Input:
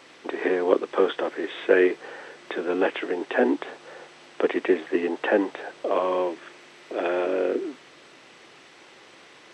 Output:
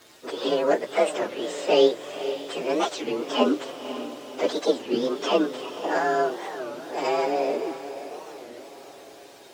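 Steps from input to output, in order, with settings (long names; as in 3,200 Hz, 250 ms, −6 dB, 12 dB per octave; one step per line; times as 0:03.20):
partials spread apart or drawn together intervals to 130%
feedback delay with all-pass diffusion 534 ms, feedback 54%, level −11.5 dB
wow of a warped record 33 1/3 rpm, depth 250 cents
level +3 dB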